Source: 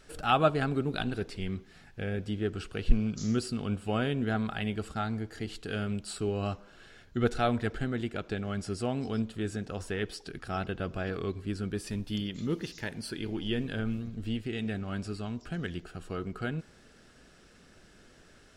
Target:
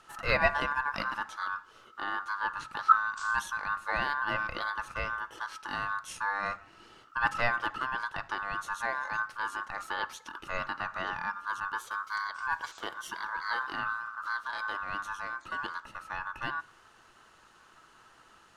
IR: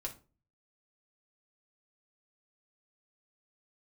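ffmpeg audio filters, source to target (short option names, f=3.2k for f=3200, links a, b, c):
-filter_complex "[0:a]aeval=exprs='val(0)*sin(2*PI*1300*n/s)':c=same,asettb=1/sr,asplit=3[a][b][c];[a]atrim=end=11.604[d];[b]atrim=start=11.6:end=12.23,asetpts=PTS-STARTPTS,afade=t=in:d=0.004:c=qsin,afade=t=out:st=0.626:d=0.004:c=qsin,agate=range=-33dB:threshold=-39dB:ratio=3:detection=peak[e];[c]atrim=start=12.226[f];[d][e]acrossfade=d=0.004:c1=hsin:c2=qsin[g];[g][f]acrossfade=d=0.004:c1=qsin:c2=hsin,asplit=2[h][i];[1:a]atrim=start_sample=2205,lowpass=3k[j];[i][j]afir=irnorm=-1:irlink=0,volume=-8.5dB[k];[h][k]amix=inputs=2:normalize=0"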